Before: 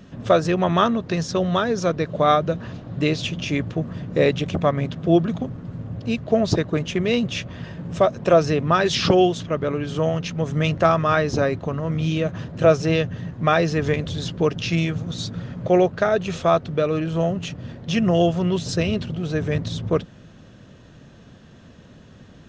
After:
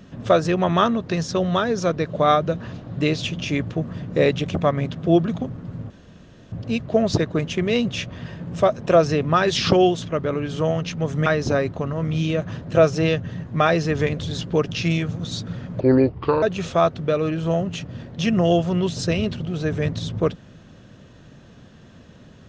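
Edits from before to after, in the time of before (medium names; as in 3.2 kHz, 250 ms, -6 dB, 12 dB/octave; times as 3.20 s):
5.90 s: insert room tone 0.62 s
10.64–11.13 s: delete
15.67–16.12 s: speed 72%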